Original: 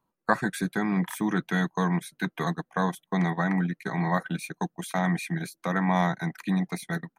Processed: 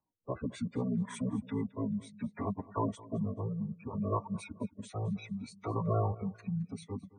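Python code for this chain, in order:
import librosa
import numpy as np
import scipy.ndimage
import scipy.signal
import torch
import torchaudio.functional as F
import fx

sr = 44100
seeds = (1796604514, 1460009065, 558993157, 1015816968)

p1 = fx.spec_gate(x, sr, threshold_db=-20, keep='strong')
p2 = fx.pitch_keep_formants(p1, sr, semitones=-9.0)
p3 = fx.rotary(p2, sr, hz=0.65)
p4 = p3 + fx.echo_feedback(p3, sr, ms=216, feedback_pct=27, wet_db=-20.0, dry=0)
y = p4 * 10.0 ** (-5.0 / 20.0)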